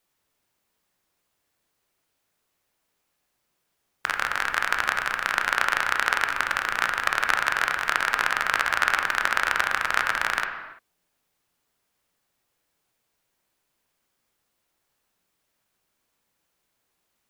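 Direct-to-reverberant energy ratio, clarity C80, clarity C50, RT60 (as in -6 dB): 4.0 dB, 8.0 dB, 6.0 dB, no single decay rate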